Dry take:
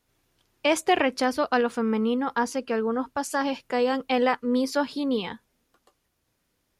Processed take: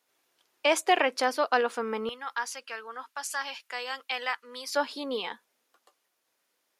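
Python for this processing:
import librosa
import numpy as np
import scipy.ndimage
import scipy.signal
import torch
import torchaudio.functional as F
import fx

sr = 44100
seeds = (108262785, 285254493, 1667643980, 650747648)

y = fx.highpass(x, sr, hz=fx.steps((0.0, 470.0), (2.09, 1400.0), (4.75, 510.0)), slope=12)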